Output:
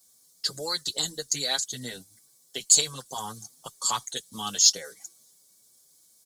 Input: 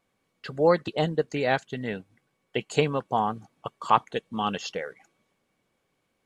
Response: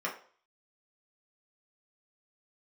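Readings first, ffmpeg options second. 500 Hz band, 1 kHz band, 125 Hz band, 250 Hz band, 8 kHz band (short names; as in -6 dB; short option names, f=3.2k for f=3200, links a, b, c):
-14.0 dB, -10.0 dB, -11.5 dB, -12.0 dB, +25.0 dB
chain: -filter_complex "[0:a]acrossover=split=100|1200[a][b][c];[b]acompressor=threshold=-35dB:ratio=4[d];[a][d][c]amix=inputs=3:normalize=0,aexciter=amount=14:drive=9.1:freq=4.2k,asplit=2[e][f];[f]adelay=6.7,afreqshift=1.8[g];[e][g]amix=inputs=2:normalize=1,volume=-1dB"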